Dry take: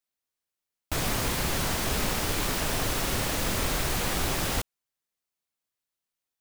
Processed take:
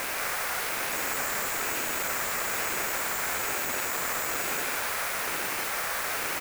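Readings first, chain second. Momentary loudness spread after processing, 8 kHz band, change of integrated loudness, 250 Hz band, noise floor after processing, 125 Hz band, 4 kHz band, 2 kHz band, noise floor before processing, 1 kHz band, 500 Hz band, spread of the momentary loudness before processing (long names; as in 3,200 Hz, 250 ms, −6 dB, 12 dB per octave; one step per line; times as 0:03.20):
1 LU, +2.0 dB, −0.5 dB, −8.5 dB, −32 dBFS, −16.0 dB, −2.5 dB, +5.0 dB, below −85 dBFS, +2.5 dB, −1.5 dB, 3 LU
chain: sign of each sample alone
bad sample-rate conversion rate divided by 6×, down none, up zero stuff
high-pass filter 40 Hz
flat-topped bell 1,300 Hz +13 dB
on a send: single-tap delay 177 ms −5.5 dB
on the sum: ring modulator whose carrier an LFO sweeps 420 Hz, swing 25%, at 1.1 Hz
level −8.5 dB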